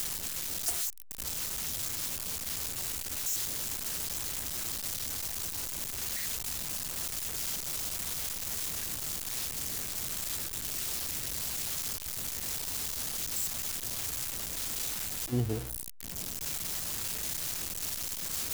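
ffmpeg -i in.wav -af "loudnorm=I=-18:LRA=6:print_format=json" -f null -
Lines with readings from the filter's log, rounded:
"input_i" : "-32.8",
"input_tp" : "-18.2",
"input_lra" : "0.9",
"input_thresh" : "-42.8",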